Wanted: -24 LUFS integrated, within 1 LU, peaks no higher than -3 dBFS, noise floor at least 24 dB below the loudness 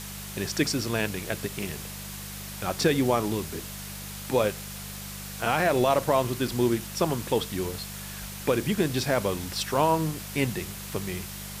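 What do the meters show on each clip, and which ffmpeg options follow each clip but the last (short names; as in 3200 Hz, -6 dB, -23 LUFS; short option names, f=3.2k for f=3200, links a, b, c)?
hum 50 Hz; harmonics up to 200 Hz; hum level -40 dBFS; noise floor -39 dBFS; noise floor target -52 dBFS; loudness -28.0 LUFS; peak -10.0 dBFS; loudness target -24.0 LUFS
-> -af "bandreject=f=50:t=h:w=4,bandreject=f=100:t=h:w=4,bandreject=f=150:t=h:w=4,bandreject=f=200:t=h:w=4"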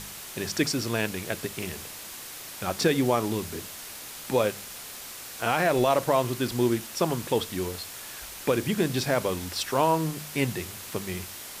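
hum none; noise floor -41 dBFS; noise floor target -52 dBFS
-> -af "afftdn=nr=11:nf=-41"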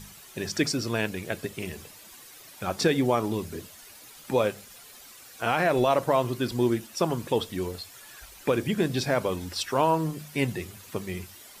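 noise floor -49 dBFS; noise floor target -52 dBFS
-> -af "afftdn=nr=6:nf=-49"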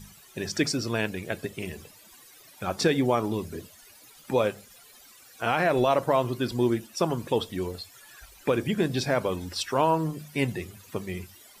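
noise floor -53 dBFS; loudness -27.5 LUFS; peak -10.5 dBFS; loudness target -24.0 LUFS
-> -af "volume=3.5dB"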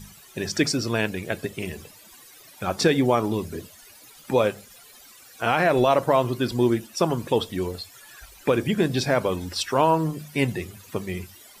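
loudness -24.0 LUFS; peak -7.0 dBFS; noise floor -50 dBFS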